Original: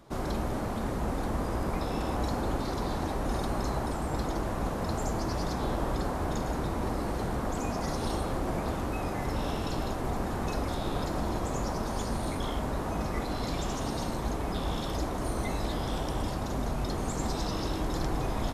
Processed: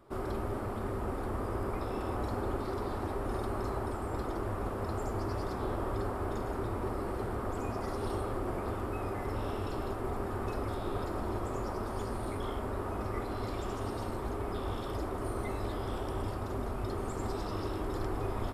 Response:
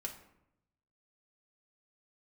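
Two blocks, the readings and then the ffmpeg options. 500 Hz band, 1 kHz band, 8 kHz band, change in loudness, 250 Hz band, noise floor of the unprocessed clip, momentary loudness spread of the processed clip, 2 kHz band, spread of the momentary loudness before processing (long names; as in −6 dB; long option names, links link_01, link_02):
−1.5 dB, −4.0 dB, −10.5 dB, −4.0 dB, −5.0 dB, −33 dBFS, 2 LU, −5.0 dB, 1 LU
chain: -filter_complex "[0:a]equalizer=frequency=100:width_type=o:width=0.33:gain=9,equalizer=frequency=160:width_type=o:width=0.33:gain=-11,equalizer=frequency=400:width_type=o:width=0.33:gain=8,equalizer=frequency=1250:width_type=o:width=0.33:gain=6,equalizer=frequency=4000:width_type=o:width=0.33:gain=-4,equalizer=frequency=6300:width_type=o:width=0.33:gain=-11,asplit=2[link_01][link_02];[1:a]atrim=start_sample=2205,lowpass=frequency=4000:width=0.5412,lowpass=frequency=4000:width=1.3066[link_03];[link_02][link_03]afir=irnorm=-1:irlink=0,volume=-12.5dB[link_04];[link_01][link_04]amix=inputs=2:normalize=0,volume=-6.5dB"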